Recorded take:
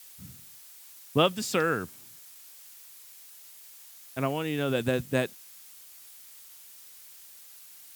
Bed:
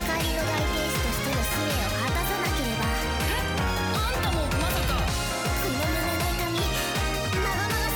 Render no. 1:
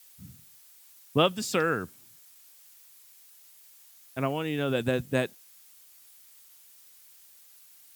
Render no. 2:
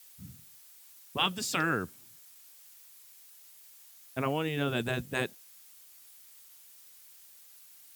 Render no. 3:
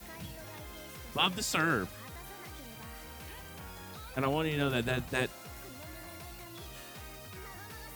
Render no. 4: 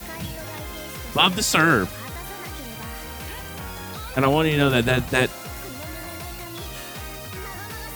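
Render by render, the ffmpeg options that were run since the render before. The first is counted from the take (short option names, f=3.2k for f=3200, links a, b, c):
-af "afftdn=nr=6:nf=-50"
-af "afftfilt=real='re*lt(hypot(re,im),0.282)':imag='im*lt(hypot(re,im),0.282)':win_size=1024:overlap=0.75"
-filter_complex "[1:a]volume=-21dB[a];[0:a][a]amix=inputs=2:normalize=0"
-af "volume=12dB,alimiter=limit=-3dB:level=0:latency=1"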